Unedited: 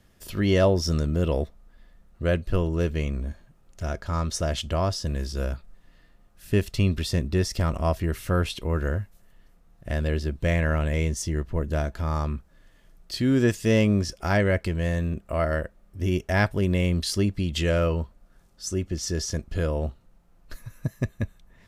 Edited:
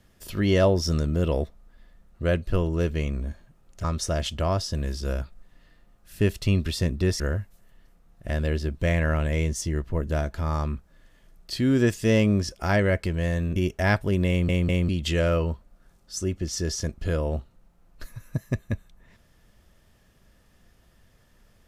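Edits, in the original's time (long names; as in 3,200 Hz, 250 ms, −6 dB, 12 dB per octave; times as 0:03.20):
0:03.84–0:04.16: remove
0:07.52–0:08.81: remove
0:15.17–0:16.06: remove
0:16.79: stutter in place 0.20 s, 3 plays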